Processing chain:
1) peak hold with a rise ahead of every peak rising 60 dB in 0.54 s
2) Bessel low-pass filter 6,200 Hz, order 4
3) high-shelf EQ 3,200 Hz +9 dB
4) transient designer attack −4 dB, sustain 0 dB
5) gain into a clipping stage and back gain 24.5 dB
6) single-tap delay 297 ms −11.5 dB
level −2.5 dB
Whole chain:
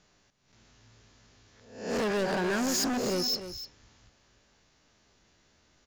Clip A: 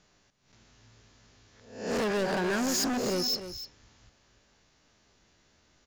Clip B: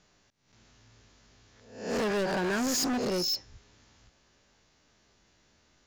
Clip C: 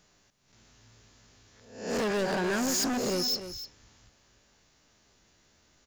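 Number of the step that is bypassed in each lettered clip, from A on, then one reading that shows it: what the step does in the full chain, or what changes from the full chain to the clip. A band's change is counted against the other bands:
4, change in momentary loudness spread −1 LU
6, change in momentary loudness spread −8 LU
2, 8 kHz band +1.5 dB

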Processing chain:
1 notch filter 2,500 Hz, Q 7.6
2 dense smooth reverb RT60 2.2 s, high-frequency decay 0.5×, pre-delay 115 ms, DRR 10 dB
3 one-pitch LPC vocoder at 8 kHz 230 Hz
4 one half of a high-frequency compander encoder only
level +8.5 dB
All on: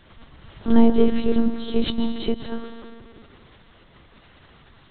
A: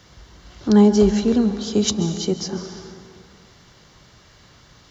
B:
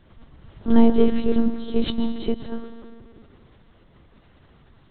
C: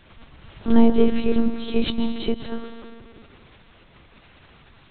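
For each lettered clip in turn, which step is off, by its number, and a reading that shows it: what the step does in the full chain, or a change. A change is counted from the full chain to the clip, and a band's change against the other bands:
3, 125 Hz band +7.5 dB
4, 4 kHz band −2.5 dB
1, 2 kHz band +2.0 dB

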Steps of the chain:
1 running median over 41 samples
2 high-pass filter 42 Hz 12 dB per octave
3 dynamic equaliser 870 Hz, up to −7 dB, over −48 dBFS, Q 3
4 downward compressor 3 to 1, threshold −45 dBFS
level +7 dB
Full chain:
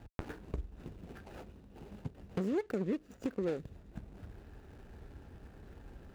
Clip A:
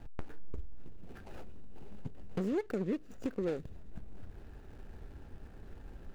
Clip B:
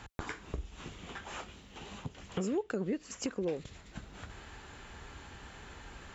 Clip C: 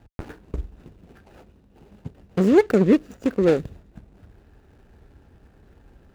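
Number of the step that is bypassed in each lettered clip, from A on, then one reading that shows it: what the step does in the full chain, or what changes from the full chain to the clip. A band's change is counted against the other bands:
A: 2, change in crest factor −4.0 dB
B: 1, 4 kHz band +11.5 dB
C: 4, average gain reduction 8.0 dB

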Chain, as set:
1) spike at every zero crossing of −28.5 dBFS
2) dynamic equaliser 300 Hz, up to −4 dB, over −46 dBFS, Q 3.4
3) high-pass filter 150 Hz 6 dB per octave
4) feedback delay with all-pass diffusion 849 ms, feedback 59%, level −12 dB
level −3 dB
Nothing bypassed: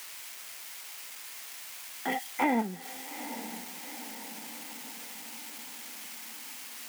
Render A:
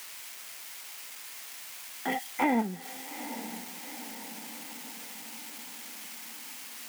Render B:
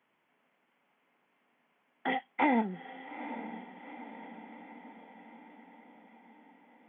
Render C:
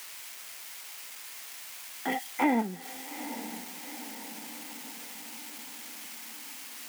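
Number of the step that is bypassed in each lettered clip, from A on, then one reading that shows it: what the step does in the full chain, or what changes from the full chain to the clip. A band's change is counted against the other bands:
3, 125 Hz band +2.0 dB
1, distortion level −7 dB
2, 250 Hz band +2.0 dB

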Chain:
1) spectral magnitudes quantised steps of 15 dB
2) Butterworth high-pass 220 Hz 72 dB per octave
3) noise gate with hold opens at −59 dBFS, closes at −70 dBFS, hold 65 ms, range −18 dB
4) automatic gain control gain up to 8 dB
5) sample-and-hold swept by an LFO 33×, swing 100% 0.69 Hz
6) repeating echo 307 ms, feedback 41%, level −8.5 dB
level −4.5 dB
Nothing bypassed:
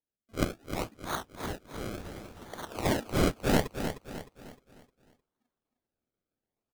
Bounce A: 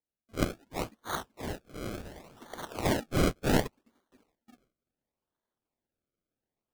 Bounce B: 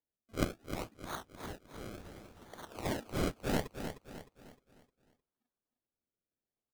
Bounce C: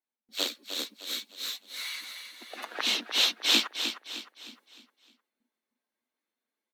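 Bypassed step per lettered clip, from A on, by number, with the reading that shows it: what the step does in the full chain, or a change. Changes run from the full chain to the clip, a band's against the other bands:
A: 6, echo-to-direct ratio −7.5 dB to none audible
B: 4, change in integrated loudness −7.0 LU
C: 5, change in crest factor +3.5 dB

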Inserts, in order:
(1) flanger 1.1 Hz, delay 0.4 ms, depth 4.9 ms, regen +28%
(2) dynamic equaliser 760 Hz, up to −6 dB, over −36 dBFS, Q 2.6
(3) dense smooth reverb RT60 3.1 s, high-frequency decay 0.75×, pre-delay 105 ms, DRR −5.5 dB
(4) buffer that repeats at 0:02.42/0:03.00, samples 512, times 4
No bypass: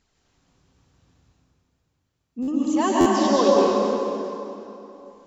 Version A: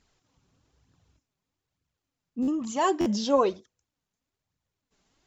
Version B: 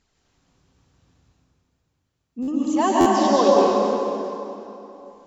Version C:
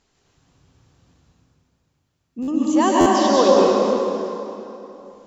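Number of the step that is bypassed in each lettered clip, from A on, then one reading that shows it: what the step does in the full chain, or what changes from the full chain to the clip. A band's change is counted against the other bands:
3, change in momentary loudness spread −11 LU
2, change in integrated loudness +1.5 LU
1, change in integrated loudness +3.5 LU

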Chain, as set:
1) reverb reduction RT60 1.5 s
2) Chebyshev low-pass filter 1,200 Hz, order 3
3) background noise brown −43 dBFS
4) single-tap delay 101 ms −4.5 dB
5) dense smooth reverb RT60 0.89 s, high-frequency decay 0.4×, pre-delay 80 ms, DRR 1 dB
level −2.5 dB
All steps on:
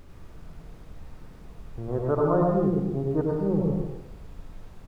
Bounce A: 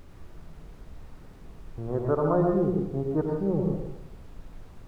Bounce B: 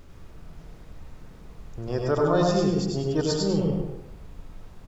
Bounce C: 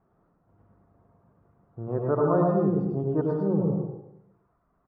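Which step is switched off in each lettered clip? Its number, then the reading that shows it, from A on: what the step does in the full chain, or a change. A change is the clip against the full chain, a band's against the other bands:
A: 4, echo-to-direct ratio 1.5 dB to −1.0 dB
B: 2, 2 kHz band +7.0 dB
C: 3, change in momentary loudness spread −3 LU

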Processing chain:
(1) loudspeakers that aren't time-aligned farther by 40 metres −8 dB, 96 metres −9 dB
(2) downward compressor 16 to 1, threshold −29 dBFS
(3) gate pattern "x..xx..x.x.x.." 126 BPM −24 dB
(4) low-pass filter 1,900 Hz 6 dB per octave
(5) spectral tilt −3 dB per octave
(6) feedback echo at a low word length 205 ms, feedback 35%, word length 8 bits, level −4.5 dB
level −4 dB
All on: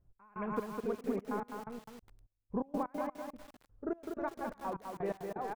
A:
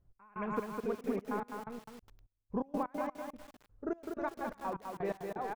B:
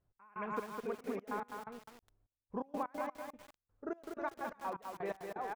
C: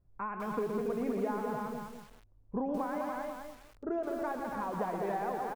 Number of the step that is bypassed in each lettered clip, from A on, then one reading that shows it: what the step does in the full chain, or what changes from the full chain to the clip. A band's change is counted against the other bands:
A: 4, 2 kHz band +2.0 dB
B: 5, 125 Hz band −7.0 dB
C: 3, 1 kHz band +1.5 dB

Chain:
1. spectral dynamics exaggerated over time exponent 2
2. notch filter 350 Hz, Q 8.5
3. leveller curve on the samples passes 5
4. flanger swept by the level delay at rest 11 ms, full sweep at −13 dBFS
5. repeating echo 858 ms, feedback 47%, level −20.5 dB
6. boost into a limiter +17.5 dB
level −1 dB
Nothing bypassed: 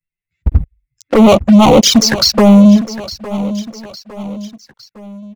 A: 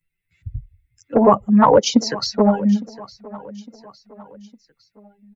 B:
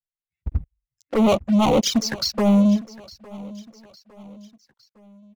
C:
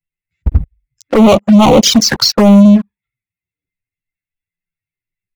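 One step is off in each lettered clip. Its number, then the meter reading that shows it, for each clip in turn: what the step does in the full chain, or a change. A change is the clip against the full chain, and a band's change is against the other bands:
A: 3, change in crest factor +8.5 dB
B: 6, 8 kHz band −2.0 dB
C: 5, change in momentary loudness spread −8 LU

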